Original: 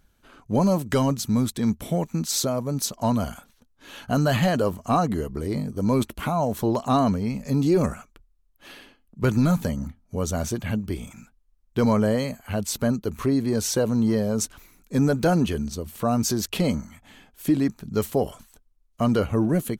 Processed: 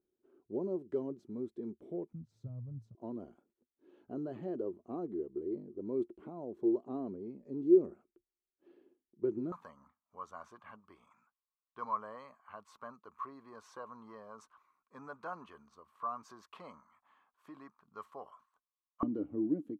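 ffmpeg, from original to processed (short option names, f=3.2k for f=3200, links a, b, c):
-af "asetnsamples=n=441:p=0,asendcmd='2.13 bandpass f 110;2.95 bandpass f 360;9.52 bandpass f 1100;19.03 bandpass f 300',bandpass=f=370:t=q:w=11:csg=0"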